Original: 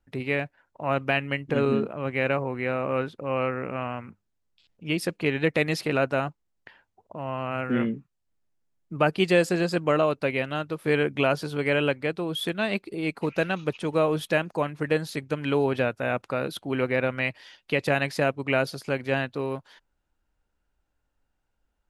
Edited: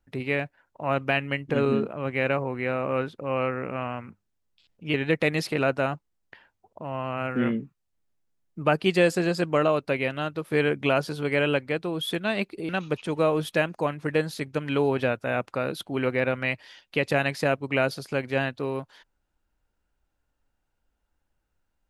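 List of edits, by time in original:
4.94–5.28 s: delete
13.03–13.45 s: delete

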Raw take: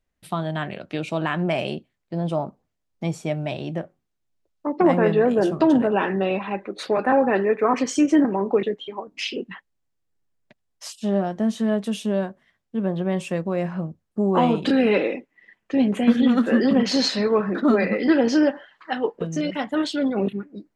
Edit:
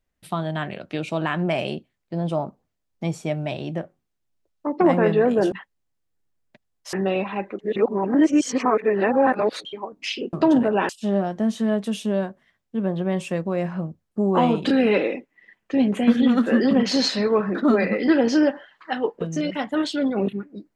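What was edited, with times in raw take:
5.52–6.08 s: swap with 9.48–10.89 s
6.74–8.80 s: reverse

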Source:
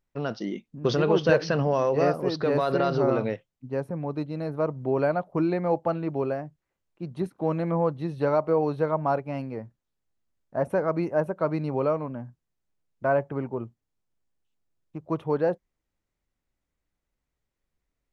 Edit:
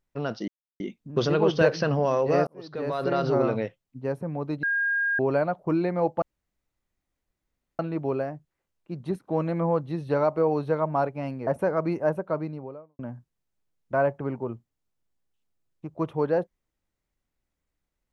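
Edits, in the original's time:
0.48 s: insert silence 0.32 s
2.15–2.92 s: fade in
4.31–4.87 s: bleep 1.62 kHz -22 dBFS
5.90 s: insert room tone 1.57 s
9.58–10.58 s: delete
11.17–12.10 s: studio fade out

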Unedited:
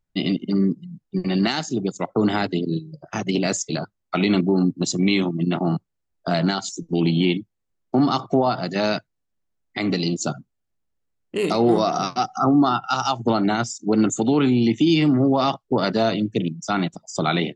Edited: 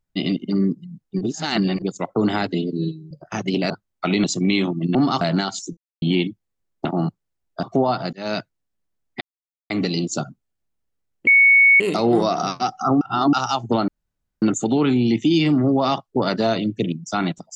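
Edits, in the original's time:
1.21–1.82 s: reverse
2.54–2.92 s: stretch 1.5×
3.51–3.80 s: delete
4.34–4.82 s: delete
5.53–6.31 s: swap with 7.95–8.21 s
6.87–7.12 s: mute
8.71–8.97 s: fade in
9.79 s: insert silence 0.49 s
11.36 s: add tone 2.22 kHz -9 dBFS 0.53 s
12.57–12.89 s: reverse
13.44–13.98 s: room tone

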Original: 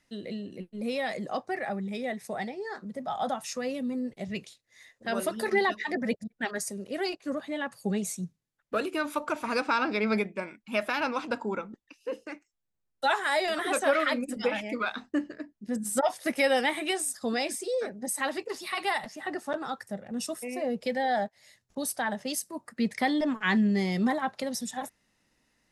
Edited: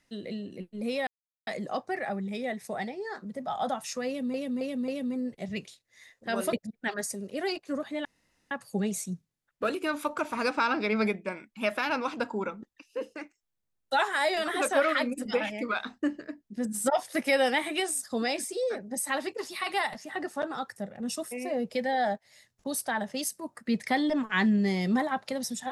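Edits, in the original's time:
1.07 s: insert silence 0.40 s
3.67–3.94 s: loop, 4 plays
5.32–6.10 s: delete
7.62 s: insert room tone 0.46 s

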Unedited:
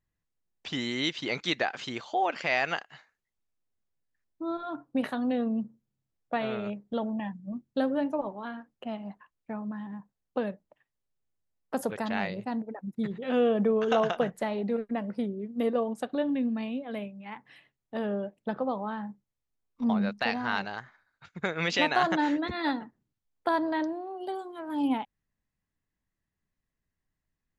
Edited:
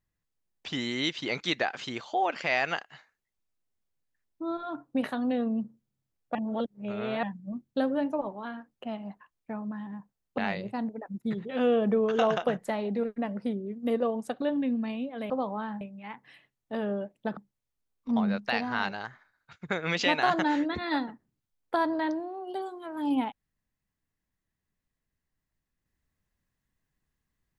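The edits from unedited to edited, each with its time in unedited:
6.35–7.23 s: reverse
10.38–12.11 s: delete
18.59–19.10 s: move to 17.03 s

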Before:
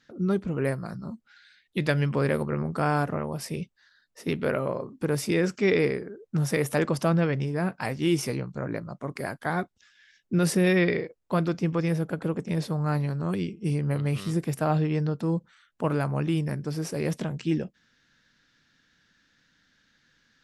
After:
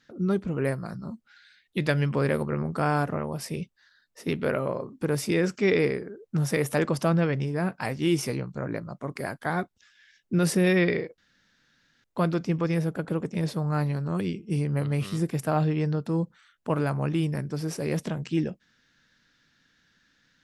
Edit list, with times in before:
11.18 s: insert room tone 0.86 s

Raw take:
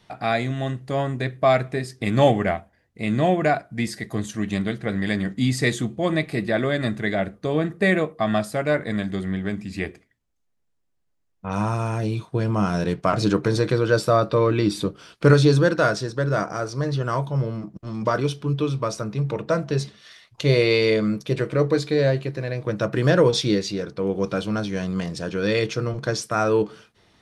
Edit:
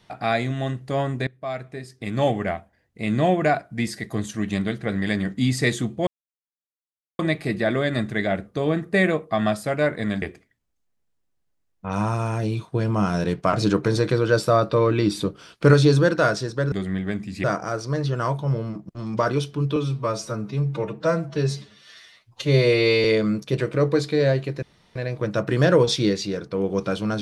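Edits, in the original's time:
1.27–3.17 s: fade in, from -17 dB
6.07 s: insert silence 1.12 s
9.10–9.82 s: move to 16.32 s
18.64–20.83 s: stretch 1.5×
22.41 s: insert room tone 0.33 s

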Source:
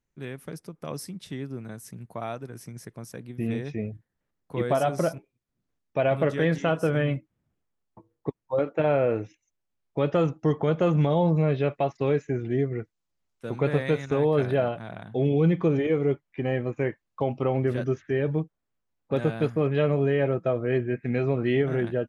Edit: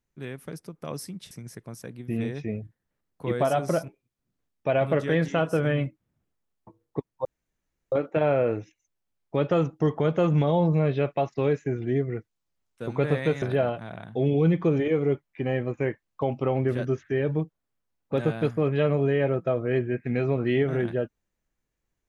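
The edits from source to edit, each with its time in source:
1.31–2.61 s: delete
8.55 s: insert room tone 0.67 s
14.05–14.41 s: delete

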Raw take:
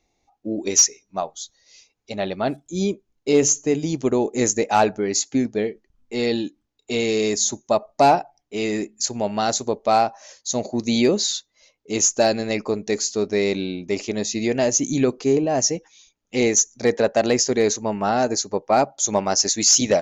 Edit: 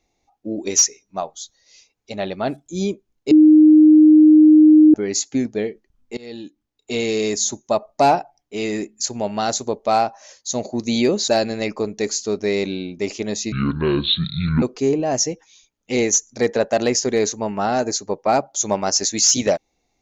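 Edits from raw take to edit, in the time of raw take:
3.31–4.94 s: bleep 308 Hz -6 dBFS
6.17–6.91 s: fade in, from -24 dB
11.28–12.17 s: delete
14.41–15.06 s: speed 59%

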